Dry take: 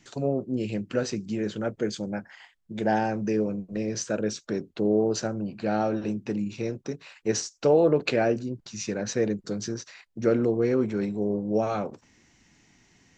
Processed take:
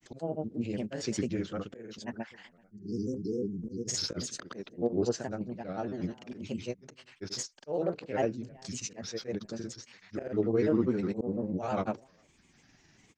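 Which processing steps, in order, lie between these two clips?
spectral delete 2.54–3.97, 470–4600 Hz; outdoor echo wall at 70 m, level -30 dB; random-step tremolo; auto swell 0.196 s; grains, pitch spread up and down by 3 st

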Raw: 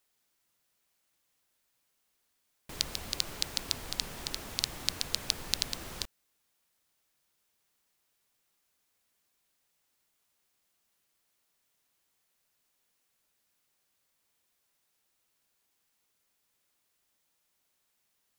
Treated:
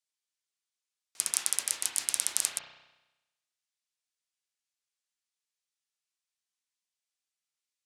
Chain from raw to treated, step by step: in parallel at +1 dB: level quantiser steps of 12 dB; on the sum: speed mistake 33 rpm record played at 78 rpm; gate -35 dBFS, range -20 dB; limiter -7 dBFS, peak gain reduction 6 dB; weighting filter ITU-R 468; reverb RT60 1.0 s, pre-delay 32 ms, DRR 1.5 dB; gain -1.5 dB

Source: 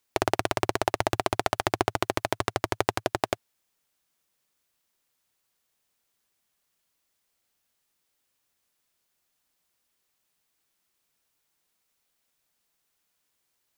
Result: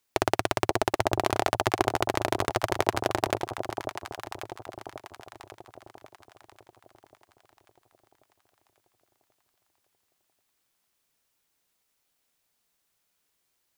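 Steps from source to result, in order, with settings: echo with dull and thin repeats by turns 0.543 s, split 860 Hz, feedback 63%, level -5 dB

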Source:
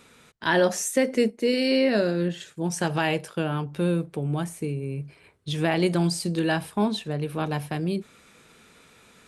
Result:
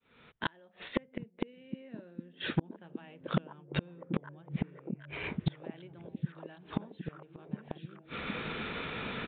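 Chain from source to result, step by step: opening faded in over 2.28 s; in parallel at -1 dB: compressor 8:1, threshold -37 dBFS, peak gain reduction 18.5 dB; on the sum: flipped gate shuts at -22 dBFS, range -41 dB; hard clip -31 dBFS, distortion -8 dB; on a send: delay with a stepping band-pass 0.764 s, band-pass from 170 Hz, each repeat 0.7 oct, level -2 dB; on the sum: downsampling 8000 Hz; gain +11 dB

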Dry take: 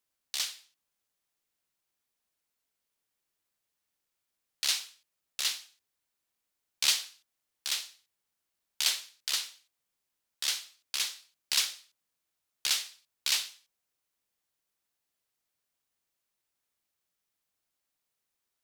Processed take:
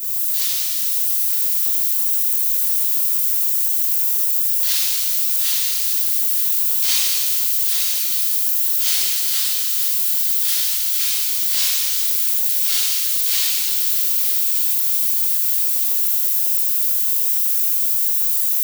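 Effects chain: switching spikes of -28.5 dBFS; HPF 220 Hz; high shelf 11000 Hz +10.5 dB; notch 650 Hz, Q 12; on a send: swung echo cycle 1.222 s, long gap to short 3:1, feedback 56%, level -12 dB; on the sum: shimmer reverb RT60 2.2 s, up +7 st, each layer -8 dB, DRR -11 dB; gain -6 dB

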